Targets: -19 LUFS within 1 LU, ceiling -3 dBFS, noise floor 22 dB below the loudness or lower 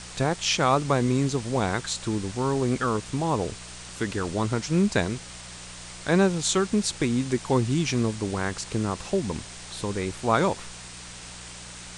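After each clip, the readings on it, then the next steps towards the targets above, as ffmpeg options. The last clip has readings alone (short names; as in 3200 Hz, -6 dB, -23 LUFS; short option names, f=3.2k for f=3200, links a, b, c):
hum 60 Hz; harmonics up to 180 Hz; hum level -44 dBFS; noise floor -42 dBFS; noise floor target -48 dBFS; loudness -26.0 LUFS; peak -8.5 dBFS; loudness target -19.0 LUFS
-> -af "bandreject=f=60:t=h:w=4,bandreject=f=120:t=h:w=4,bandreject=f=180:t=h:w=4"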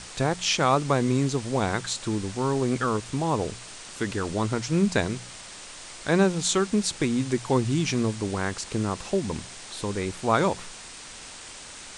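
hum none; noise floor -43 dBFS; noise floor target -48 dBFS
-> -af "afftdn=nr=6:nf=-43"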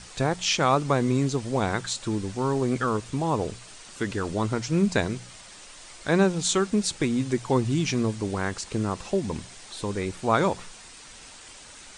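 noise floor -47 dBFS; noise floor target -48 dBFS
-> -af "afftdn=nr=6:nf=-47"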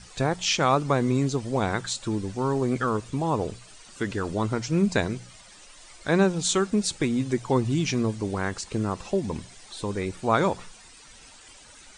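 noise floor -50 dBFS; loudness -26.0 LUFS; peak -7.5 dBFS; loudness target -19.0 LUFS
-> -af "volume=7dB,alimiter=limit=-3dB:level=0:latency=1"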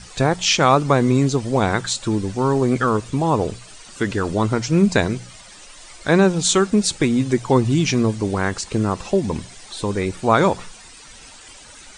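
loudness -19.0 LUFS; peak -3.0 dBFS; noise floor -43 dBFS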